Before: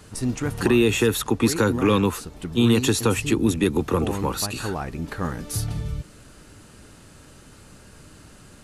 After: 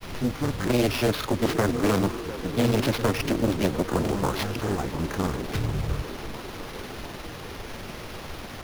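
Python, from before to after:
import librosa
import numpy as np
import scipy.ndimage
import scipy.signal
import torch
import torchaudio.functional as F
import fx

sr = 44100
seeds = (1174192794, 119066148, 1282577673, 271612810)

p1 = fx.wiener(x, sr, points=15)
p2 = fx.rider(p1, sr, range_db=4, speed_s=0.5)
p3 = p1 + F.gain(torch.from_numpy(p2), -1.0).numpy()
p4 = fx.dmg_noise_colour(p3, sr, seeds[0], colour='pink', level_db=-30.0)
p5 = fx.granulator(p4, sr, seeds[1], grain_ms=100.0, per_s=20.0, spray_ms=26.0, spread_st=0)
p6 = fx.sample_hold(p5, sr, seeds[2], rate_hz=7900.0, jitter_pct=0)
p7 = p6 + fx.echo_wet_bandpass(p6, sr, ms=701, feedback_pct=72, hz=600.0, wet_db=-11, dry=0)
p8 = fx.doppler_dist(p7, sr, depth_ms=0.94)
y = F.gain(torch.from_numpy(p8), -6.5).numpy()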